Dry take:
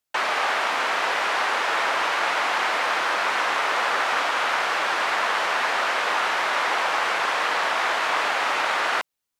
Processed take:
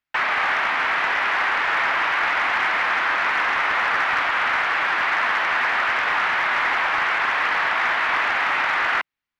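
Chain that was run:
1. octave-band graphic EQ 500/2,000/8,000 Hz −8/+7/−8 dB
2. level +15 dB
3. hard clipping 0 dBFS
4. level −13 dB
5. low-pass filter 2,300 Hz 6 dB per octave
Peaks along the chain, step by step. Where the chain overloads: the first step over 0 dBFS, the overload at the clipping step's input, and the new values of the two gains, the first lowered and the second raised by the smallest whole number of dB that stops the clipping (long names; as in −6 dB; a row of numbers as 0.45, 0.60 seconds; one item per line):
−7.5, +7.5, 0.0, −13.0, −13.0 dBFS
step 2, 7.5 dB
step 2 +7 dB, step 4 −5 dB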